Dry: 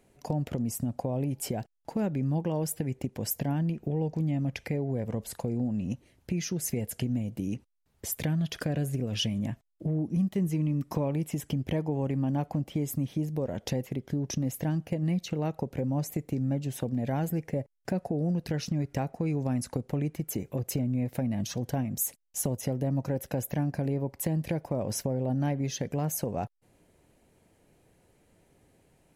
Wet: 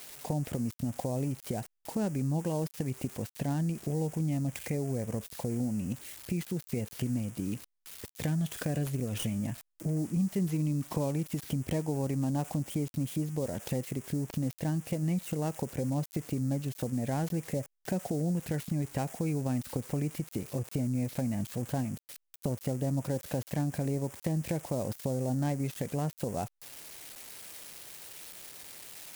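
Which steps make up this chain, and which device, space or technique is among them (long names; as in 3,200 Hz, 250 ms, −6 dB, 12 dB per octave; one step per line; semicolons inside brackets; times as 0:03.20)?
budget class-D amplifier (gap after every zero crossing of 0.11 ms; spike at every zero crossing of −27 dBFS)
level −2 dB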